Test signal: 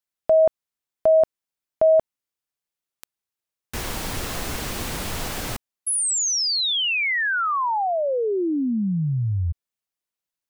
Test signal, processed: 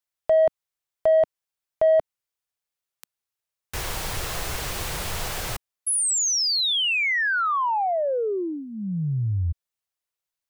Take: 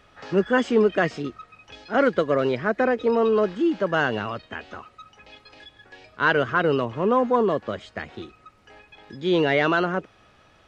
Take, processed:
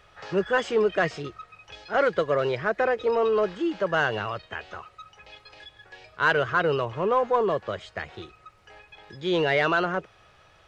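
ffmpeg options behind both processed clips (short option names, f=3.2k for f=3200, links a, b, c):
-filter_complex "[0:a]equalizer=f=250:t=o:w=0.56:g=-15,asplit=2[a][b];[b]asoftclip=type=tanh:threshold=-18dB,volume=-4dB[c];[a][c]amix=inputs=2:normalize=0,volume=-4dB"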